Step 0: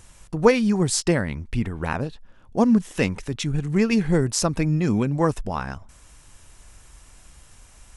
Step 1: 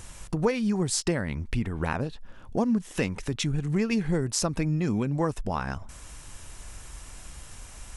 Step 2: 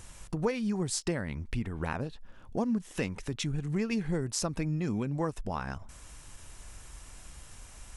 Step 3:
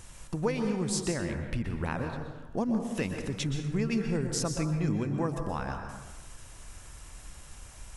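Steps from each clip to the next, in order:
downward compressor 2.5 to 1, threshold −34 dBFS, peak gain reduction 16 dB; level +5.5 dB
every ending faded ahead of time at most 500 dB per second; level −5 dB
dense smooth reverb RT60 1.2 s, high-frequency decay 0.5×, pre-delay 110 ms, DRR 4.5 dB

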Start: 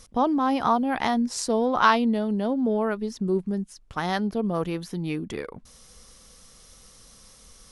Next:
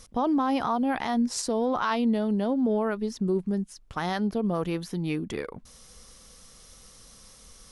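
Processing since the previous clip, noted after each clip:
brickwall limiter −17.5 dBFS, peak gain reduction 11.5 dB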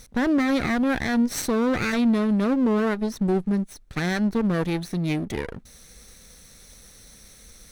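lower of the sound and its delayed copy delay 0.51 ms
level +4 dB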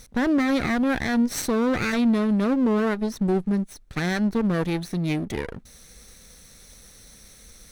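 no processing that can be heard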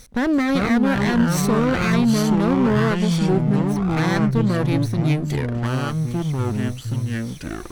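delay with pitch and tempo change per echo 332 ms, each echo −5 semitones, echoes 2
level +2 dB

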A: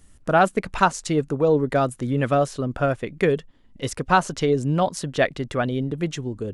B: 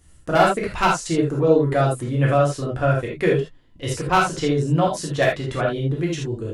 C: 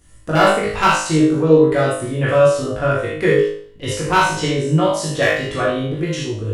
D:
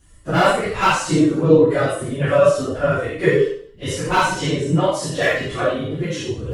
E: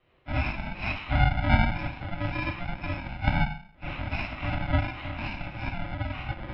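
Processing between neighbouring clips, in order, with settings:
wavefolder on the positive side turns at −9.5 dBFS; convolution reverb, pre-delay 3 ms, DRR −3.5 dB; level −3 dB
on a send: flutter between parallel walls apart 3.3 metres, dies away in 0.52 s; on the sum: dynamic equaliser 700 Hz, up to −4 dB, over −27 dBFS, Q 2.9; level +1.5 dB
random phases in long frames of 50 ms; level −2 dB
samples in bit-reversed order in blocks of 64 samples; single-sideband voice off tune −250 Hz 170–3,300 Hz; level −3 dB

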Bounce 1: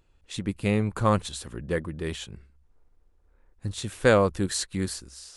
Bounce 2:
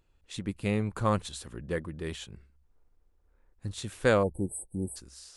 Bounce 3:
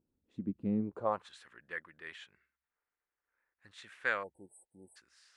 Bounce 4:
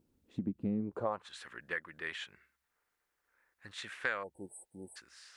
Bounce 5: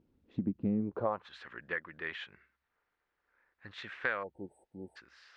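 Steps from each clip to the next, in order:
time-frequency box erased 0:04.23–0:04.96, 910–7,900 Hz; level −4.5 dB
band-pass filter sweep 240 Hz → 1,800 Hz, 0:00.80–0:01.34; level +1 dB
downward compressor 3 to 1, threshold −43 dBFS, peak gain reduction 12.5 dB; level +8.5 dB
high-frequency loss of the air 230 metres; level +3 dB

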